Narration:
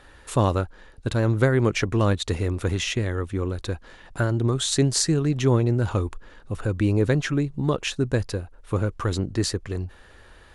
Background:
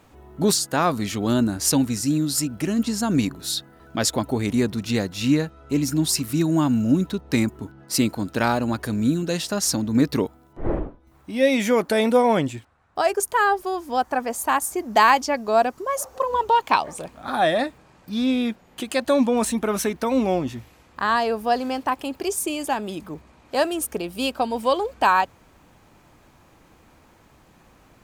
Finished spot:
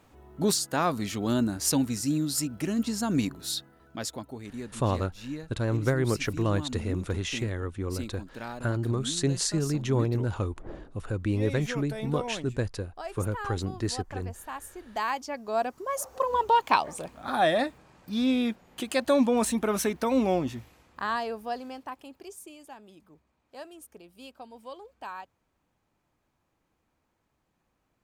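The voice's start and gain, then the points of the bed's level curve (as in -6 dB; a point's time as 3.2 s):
4.45 s, -6.0 dB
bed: 3.54 s -5.5 dB
4.41 s -17.5 dB
14.74 s -17.5 dB
16.17 s -3.5 dB
20.51 s -3.5 dB
22.66 s -22 dB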